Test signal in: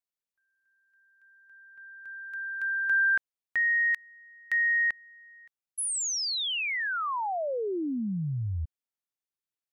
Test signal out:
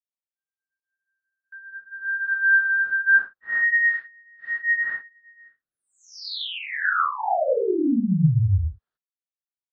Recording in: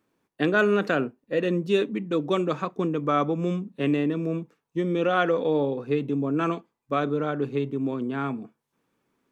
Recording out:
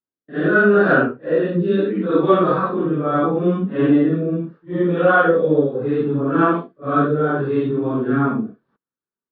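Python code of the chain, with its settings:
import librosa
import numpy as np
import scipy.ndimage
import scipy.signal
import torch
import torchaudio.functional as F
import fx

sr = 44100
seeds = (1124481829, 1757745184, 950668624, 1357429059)

p1 = fx.phase_scramble(x, sr, seeds[0], window_ms=200)
p2 = fx.gate_hold(p1, sr, open_db=-50.0, close_db=-54.0, hold_ms=206.0, range_db=-33, attack_ms=4.4, release_ms=26.0)
p3 = scipy.signal.sosfilt(scipy.signal.butter(6, 4400.0, 'lowpass', fs=sr, output='sos'), p2)
p4 = fx.rider(p3, sr, range_db=4, speed_s=0.5)
p5 = p3 + (p4 * librosa.db_to_amplitude(3.0))
p6 = fx.rotary(p5, sr, hz=0.75)
p7 = fx.high_shelf_res(p6, sr, hz=1900.0, db=-6.0, q=3.0)
y = p7 * librosa.db_to_amplitude(1.5)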